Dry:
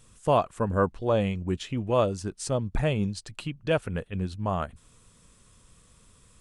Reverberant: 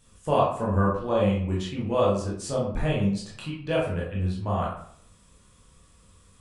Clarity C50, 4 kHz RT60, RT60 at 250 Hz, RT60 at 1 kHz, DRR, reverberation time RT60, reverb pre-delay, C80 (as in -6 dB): 3.0 dB, 0.40 s, 0.60 s, 0.60 s, -5.0 dB, 0.60 s, 14 ms, 7.5 dB